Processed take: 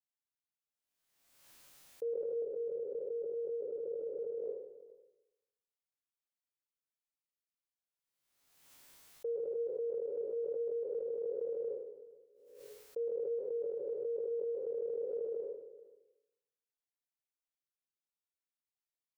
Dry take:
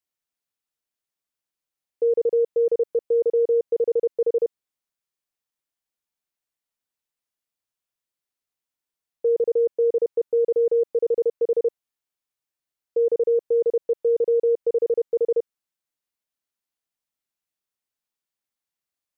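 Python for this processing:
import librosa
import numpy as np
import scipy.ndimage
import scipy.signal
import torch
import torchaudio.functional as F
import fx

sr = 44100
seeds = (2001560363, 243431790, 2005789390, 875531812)

y = fx.spec_trails(x, sr, decay_s=0.89)
y = fx.bessel_lowpass(y, sr, hz=650.0, order=2, at=(2.42, 4.44))
y = fx.hum_notches(y, sr, base_hz=60, count=8)
y = fx.comb_fb(y, sr, f0_hz=140.0, decay_s=0.52, harmonics='all', damping=0.0, mix_pct=70)
y = y + 10.0 ** (-20.0 / 20.0) * np.pad(y, (int(425 * sr / 1000.0), 0))[:len(y)]
y = fx.pre_swell(y, sr, db_per_s=47.0)
y = y * librosa.db_to_amplitude(-7.0)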